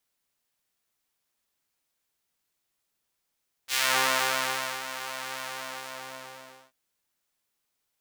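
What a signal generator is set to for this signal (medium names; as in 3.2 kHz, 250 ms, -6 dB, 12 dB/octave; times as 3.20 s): synth patch with pulse-width modulation C3, noise -22.5 dB, filter highpass, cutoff 570 Hz, Q 0.8, filter envelope 2.5 oct, filter decay 0.28 s, filter sustain 35%, attack 59 ms, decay 1.07 s, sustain -14 dB, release 1.33 s, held 1.71 s, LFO 3.9 Hz, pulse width 36%, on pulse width 5%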